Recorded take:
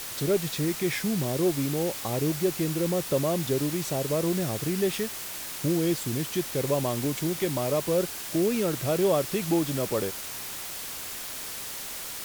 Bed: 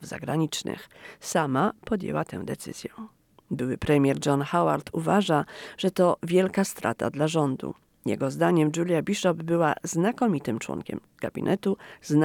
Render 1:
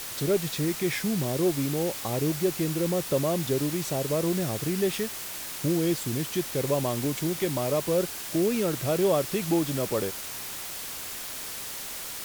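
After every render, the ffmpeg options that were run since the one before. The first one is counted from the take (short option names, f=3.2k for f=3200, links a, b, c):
-af anull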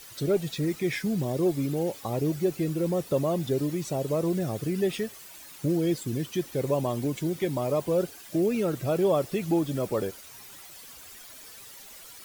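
-af "afftdn=nr=13:nf=-37"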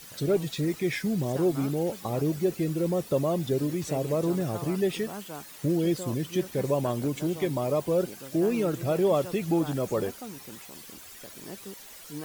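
-filter_complex "[1:a]volume=-18dB[a];[0:a][a]amix=inputs=2:normalize=0"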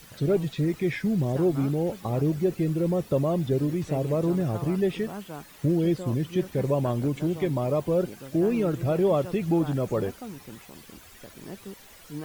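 -filter_complex "[0:a]acrossover=split=3400[a][b];[b]acompressor=threshold=-49dB:ratio=4:attack=1:release=60[c];[a][c]amix=inputs=2:normalize=0,lowshelf=f=140:g=9"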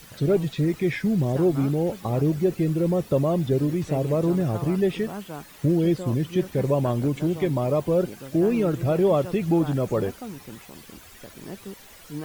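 -af "volume=2.5dB"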